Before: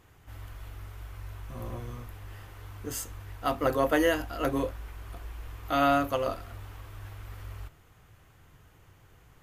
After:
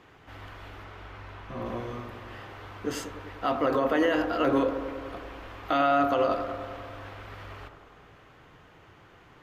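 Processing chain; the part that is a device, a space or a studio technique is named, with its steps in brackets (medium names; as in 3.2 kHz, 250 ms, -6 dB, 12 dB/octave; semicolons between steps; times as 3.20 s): DJ mixer with the lows and highs turned down (three-band isolator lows -14 dB, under 160 Hz, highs -20 dB, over 4.9 kHz; peak limiter -23.5 dBFS, peak gain reduction 10.5 dB); 0.83–1.65 s: treble shelf 9.2 kHz -> 6.4 kHz -8.5 dB; bucket-brigade echo 98 ms, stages 1024, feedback 74%, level -9.5 dB; trim +7.5 dB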